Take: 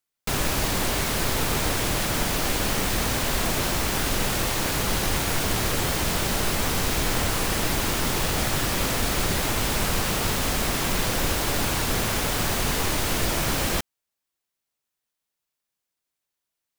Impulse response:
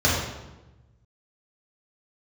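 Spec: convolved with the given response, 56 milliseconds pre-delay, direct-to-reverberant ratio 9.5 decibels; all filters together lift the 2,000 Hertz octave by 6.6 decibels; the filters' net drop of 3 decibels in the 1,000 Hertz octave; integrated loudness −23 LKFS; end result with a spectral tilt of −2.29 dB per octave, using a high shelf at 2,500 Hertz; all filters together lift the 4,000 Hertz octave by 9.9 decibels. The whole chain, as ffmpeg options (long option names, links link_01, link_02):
-filter_complex "[0:a]equalizer=frequency=1000:width_type=o:gain=-7,equalizer=frequency=2000:width_type=o:gain=6,highshelf=frequency=2500:gain=3.5,equalizer=frequency=4000:width_type=o:gain=8,asplit=2[link_01][link_02];[1:a]atrim=start_sample=2205,adelay=56[link_03];[link_02][link_03]afir=irnorm=-1:irlink=0,volume=-27.5dB[link_04];[link_01][link_04]amix=inputs=2:normalize=0,volume=-5dB"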